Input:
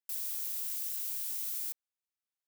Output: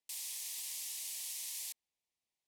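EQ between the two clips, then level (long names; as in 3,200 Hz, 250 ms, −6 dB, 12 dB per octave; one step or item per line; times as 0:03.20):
Butterworth band-reject 1,400 Hz, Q 1.8
low-pass filter 11,000 Hz 12 dB per octave
high-shelf EQ 7,800 Hz −6 dB
+5.5 dB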